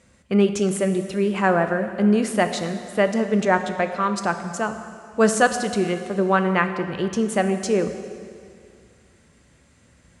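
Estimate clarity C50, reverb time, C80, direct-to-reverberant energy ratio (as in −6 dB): 9.0 dB, 2.3 s, 10.0 dB, 8.0 dB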